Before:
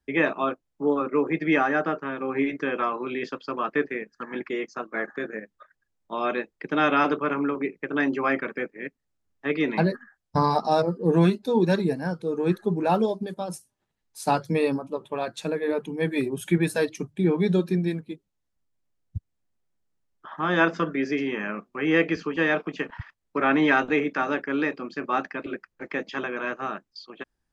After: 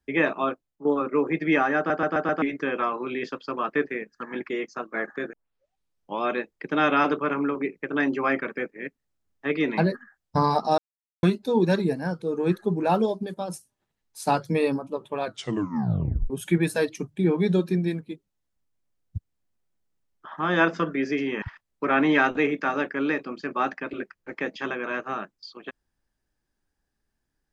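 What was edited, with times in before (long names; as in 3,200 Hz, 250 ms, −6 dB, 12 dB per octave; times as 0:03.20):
0:00.49–0:00.85: fade out, to −12.5 dB
0:01.77: stutter in place 0.13 s, 5 plays
0:05.33: tape start 0.89 s
0:10.78–0:11.23: silence
0:15.24: tape stop 1.06 s
0:21.42–0:22.95: remove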